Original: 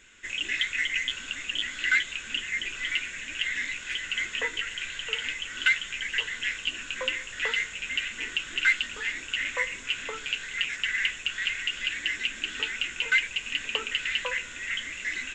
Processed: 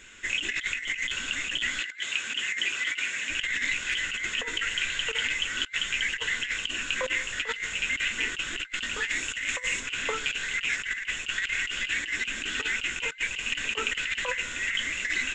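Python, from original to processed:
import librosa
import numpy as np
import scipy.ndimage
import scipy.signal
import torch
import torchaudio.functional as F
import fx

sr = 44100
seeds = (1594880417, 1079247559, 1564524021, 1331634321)

y = fx.highpass(x, sr, hz=360.0, slope=6, at=(1.8, 3.3))
y = fx.high_shelf(y, sr, hz=fx.line((9.06, 8100.0), (9.79, 5400.0)), db=10.0, at=(9.06, 9.79), fade=0.02)
y = fx.over_compress(y, sr, threshold_db=-32.0, ratio=-0.5)
y = y * librosa.db_to_amplitude(3.0)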